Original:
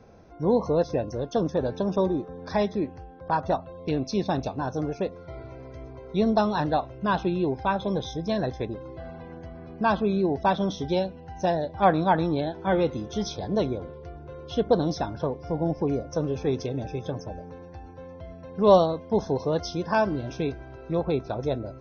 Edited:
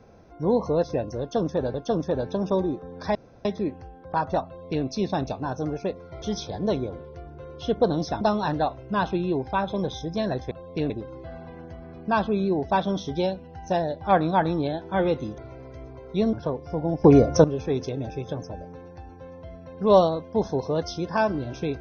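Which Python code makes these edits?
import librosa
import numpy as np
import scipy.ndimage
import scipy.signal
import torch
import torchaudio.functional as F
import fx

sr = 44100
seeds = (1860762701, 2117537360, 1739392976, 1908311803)

y = fx.edit(x, sr, fx.repeat(start_s=1.2, length_s=0.54, count=2),
    fx.insert_room_tone(at_s=2.61, length_s=0.3),
    fx.duplicate(start_s=3.62, length_s=0.39, to_s=8.63),
    fx.swap(start_s=5.38, length_s=0.95, other_s=13.11, other_length_s=1.99),
    fx.clip_gain(start_s=15.81, length_s=0.4, db=12.0), tone=tone)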